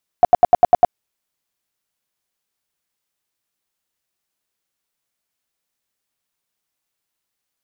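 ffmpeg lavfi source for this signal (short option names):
-f lavfi -i "aevalsrc='0.596*sin(2*PI*712*mod(t,0.1))*lt(mod(t,0.1),13/712)':d=0.7:s=44100"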